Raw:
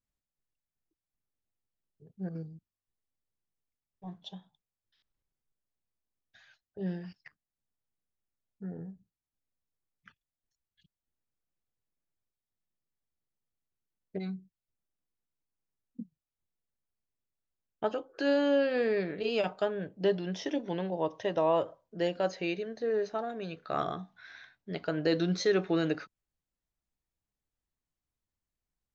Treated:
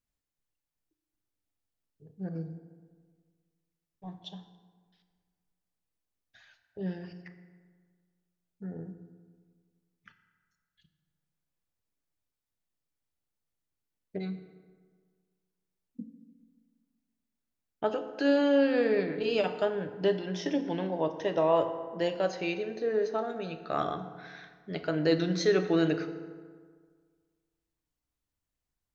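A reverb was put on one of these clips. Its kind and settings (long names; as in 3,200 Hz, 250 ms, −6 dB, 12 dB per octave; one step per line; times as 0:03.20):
feedback delay network reverb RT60 1.7 s, low-frequency decay 1.05×, high-frequency decay 0.55×, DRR 7.5 dB
level +1 dB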